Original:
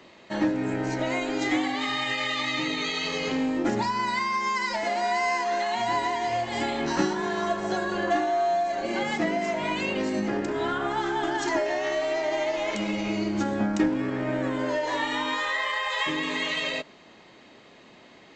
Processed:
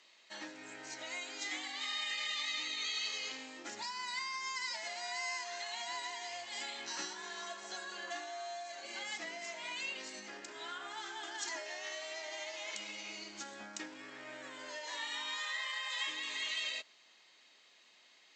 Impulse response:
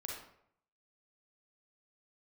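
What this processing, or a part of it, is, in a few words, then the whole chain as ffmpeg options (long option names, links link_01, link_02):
piezo pickup straight into a mixer: -af "lowpass=7500,aderivative"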